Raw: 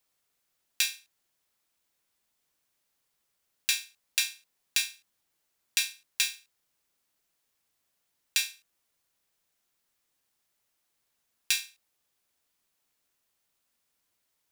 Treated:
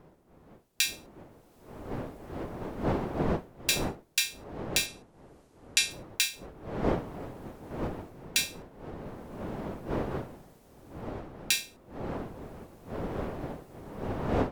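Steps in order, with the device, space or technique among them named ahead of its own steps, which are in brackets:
0:04.86–0:05.91: low-pass filter 11,000 Hz 24 dB per octave
smartphone video outdoors (wind on the microphone 500 Hz −44 dBFS; automatic gain control gain up to 15 dB; level −3.5 dB; AAC 96 kbit/s 48,000 Hz)

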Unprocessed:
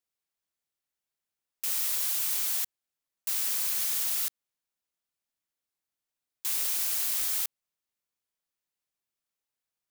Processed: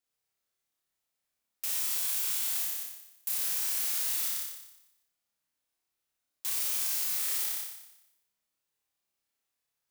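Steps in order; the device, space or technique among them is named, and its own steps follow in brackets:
0:02.64–0:03.29: parametric band 13,000 Hz +12 dB
flutter between parallel walls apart 5.1 metres, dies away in 0.88 s
soft clipper into limiter (soft clipping −14 dBFS, distortion −25 dB; brickwall limiter −22.5 dBFS, peak gain reduction 7 dB)

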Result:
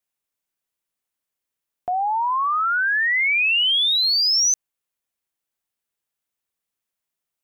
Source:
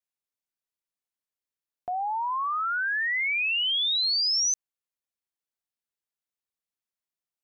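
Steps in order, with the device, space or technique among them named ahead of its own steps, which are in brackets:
exciter from parts (in parallel at −12 dB: high-pass filter 3,400 Hz 24 dB per octave + soft clipping −29.5 dBFS, distortion −12 dB + high-pass filter 2,600 Hz 12 dB per octave)
0:01.91–0:03.19: on the sum: low-pass filter 6,800 Hz 12 dB per octave
level +7 dB

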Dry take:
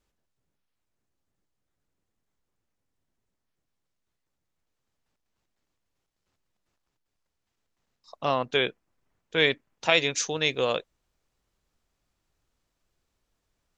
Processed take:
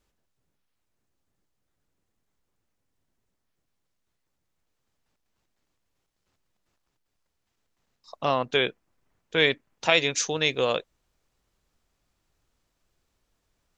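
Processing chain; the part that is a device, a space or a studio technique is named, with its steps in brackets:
parallel compression (in parallel at −8 dB: downward compressor, threshold −30 dBFS, peak gain reduction 14 dB)

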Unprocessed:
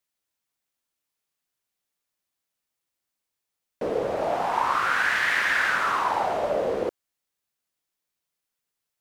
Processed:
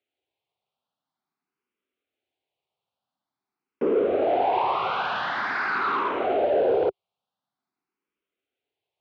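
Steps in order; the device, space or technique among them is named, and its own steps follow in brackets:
barber-pole phaser into a guitar amplifier (frequency shifter mixed with the dry sound +0.47 Hz; soft clipping −25 dBFS, distortion −12 dB; loudspeaker in its box 93–3,500 Hz, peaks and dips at 260 Hz +4 dB, 390 Hz +8 dB, 760 Hz +6 dB, 1,800 Hz −9 dB)
level +5.5 dB

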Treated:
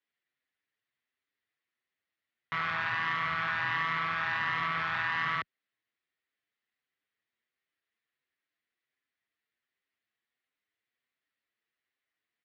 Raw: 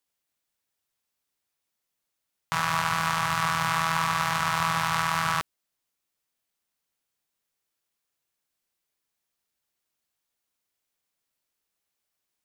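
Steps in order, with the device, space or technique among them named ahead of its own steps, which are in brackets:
barber-pole flanger into a guitar amplifier (barber-pole flanger 6.9 ms +1.4 Hz; soft clipping −25.5 dBFS, distortion −12 dB; loudspeaker in its box 100–3,800 Hz, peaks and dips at 170 Hz −7 dB, 580 Hz −4 dB, 880 Hz −7 dB, 1,900 Hz +10 dB)

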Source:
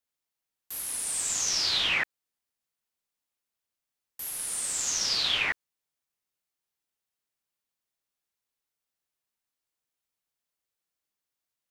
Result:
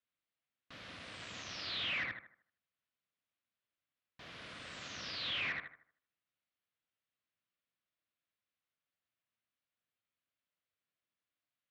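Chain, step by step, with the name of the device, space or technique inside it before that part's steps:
analogue delay pedal into a guitar amplifier (bucket-brigade delay 77 ms, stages 1,024, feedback 36%, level −9 dB; tube saturation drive 36 dB, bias 0.6; loudspeaker in its box 82–3,700 Hz, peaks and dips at 100 Hz +4 dB, 400 Hz −7 dB, 860 Hz −9 dB)
level +2 dB

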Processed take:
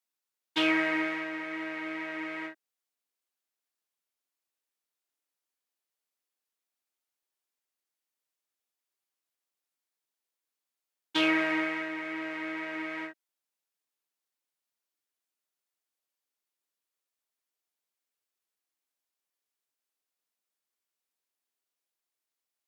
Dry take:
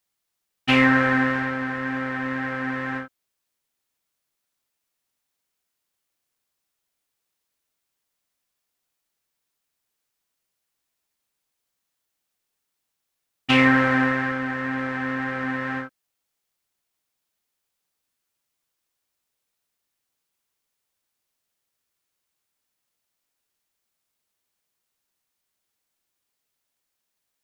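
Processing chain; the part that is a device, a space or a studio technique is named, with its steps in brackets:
high-pass filter 200 Hz 24 dB per octave
nightcore (speed change +21%)
level −8.5 dB

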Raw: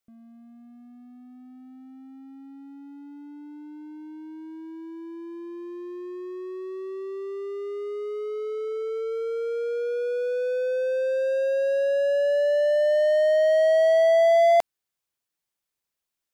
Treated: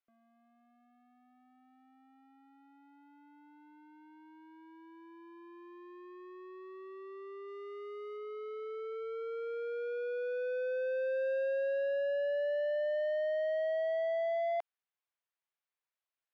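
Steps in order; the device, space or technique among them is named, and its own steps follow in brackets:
DJ mixer with the lows and highs turned down (three-way crossover with the lows and the highs turned down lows −22 dB, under 500 Hz, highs −22 dB, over 3,400 Hz; brickwall limiter −24.5 dBFS, peak gain reduction 12 dB)
0:07.48–0:08.17: high-shelf EQ 5,300 Hz +8 dB
level −4 dB

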